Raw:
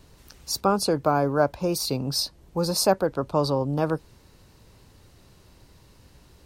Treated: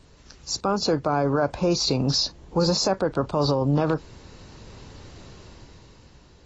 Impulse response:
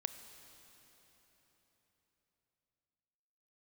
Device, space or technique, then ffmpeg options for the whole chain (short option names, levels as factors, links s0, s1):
low-bitrate web radio: -af "dynaudnorm=f=210:g=11:m=3.55,alimiter=limit=0.224:level=0:latency=1:release=57" -ar 24000 -c:a aac -b:a 24k